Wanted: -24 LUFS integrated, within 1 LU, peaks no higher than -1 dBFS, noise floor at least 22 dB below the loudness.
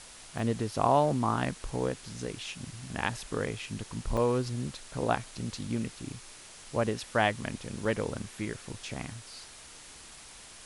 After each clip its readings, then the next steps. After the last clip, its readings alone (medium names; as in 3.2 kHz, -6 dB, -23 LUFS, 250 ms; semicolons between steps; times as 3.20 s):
dropouts 3; longest dropout 3.6 ms; noise floor -50 dBFS; noise floor target -55 dBFS; loudness -32.5 LUFS; peak level -11.0 dBFS; loudness target -24.0 LUFS
-> interpolate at 0.39/4.17/7.85 s, 3.6 ms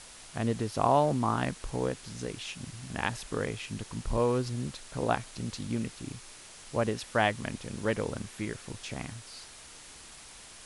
dropouts 0; noise floor -50 dBFS; noise floor target -55 dBFS
-> noise reduction 6 dB, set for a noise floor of -50 dBFS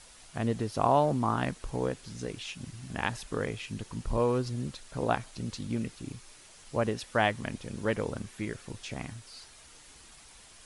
noise floor -54 dBFS; noise floor target -55 dBFS
-> noise reduction 6 dB, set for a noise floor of -54 dBFS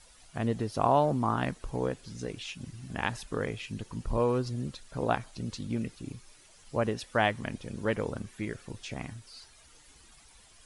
noise floor -58 dBFS; loudness -32.5 LUFS; peak level -11.0 dBFS; loudness target -24.0 LUFS
-> trim +8.5 dB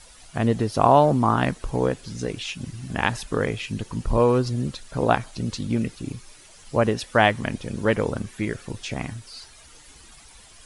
loudness -24.0 LUFS; peak level -2.5 dBFS; noise floor -49 dBFS